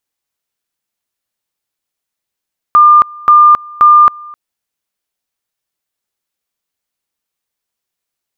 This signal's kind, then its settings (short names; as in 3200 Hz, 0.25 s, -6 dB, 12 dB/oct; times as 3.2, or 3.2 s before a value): two-level tone 1200 Hz -1.5 dBFS, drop 25.5 dB, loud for 0.27 s, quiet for 0.26 s, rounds 3